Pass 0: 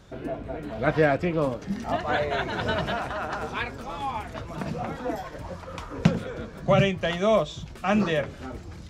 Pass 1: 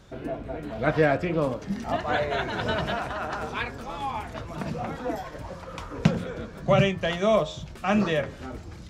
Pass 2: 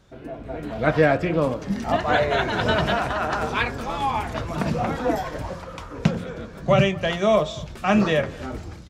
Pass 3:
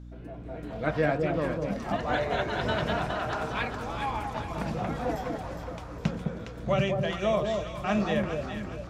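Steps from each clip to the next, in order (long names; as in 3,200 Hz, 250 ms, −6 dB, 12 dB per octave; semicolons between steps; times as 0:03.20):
hum removal 88.83 Hz, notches 21
automatic gain control gain up to 12.5 dB; slap from a distant wall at 39 metres, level −22 dB; level −4.5 dB
mains hum 60 Hz, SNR 12 dB; delay that swaps between a low-pass and a high-pass 206 ms, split 920 Hz, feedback 64%, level −3.5 dB; level −8.5 dB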